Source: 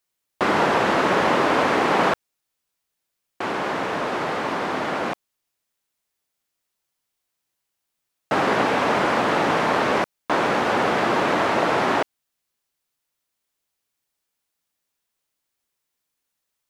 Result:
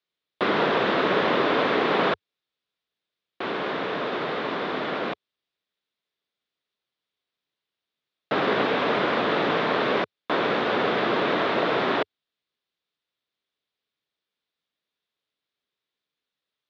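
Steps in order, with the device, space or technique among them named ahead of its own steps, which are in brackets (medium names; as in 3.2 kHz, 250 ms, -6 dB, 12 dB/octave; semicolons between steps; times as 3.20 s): guitar cabinet (cabinet simulation 80–4400 Hz, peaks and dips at 93 Hz -6 dB, 430 Hz +4 dB, 850 Hz -5 dB, 3.6 kHz +7 dB); trim -3 dB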